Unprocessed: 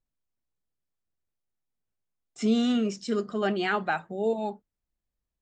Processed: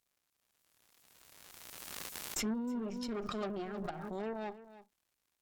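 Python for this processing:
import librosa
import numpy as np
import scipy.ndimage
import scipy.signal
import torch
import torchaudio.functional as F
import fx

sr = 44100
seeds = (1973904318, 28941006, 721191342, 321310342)

p1 = librosa.effects.preemphasis(x, coef=0.9, zi=[0.0])
p2 = fx.env_lowpass_down(p1, sr, base_hz=340.0, full_db=-37.5)
p3 = fx.notch_comb(p2, sr, f0_hz=500.0)
p4 = fx.dmg_crackle(p3, sr, seeds[0], per_s=210.0, level_db=-73.0)
p5 = fx.cheby_harmonics(p4, sr, harmonics=(8,), levels_db=(-18,), full_scale_db=-34.5)
p6 = p5 + fx.echo_single(p5, sr, ms=313, db=-15.5, dry=0)
p7 = fx.pre_swell(p6, sr, db_per_s=23.0)
y = p7 * 10.0 ** (7.5 / 20.0)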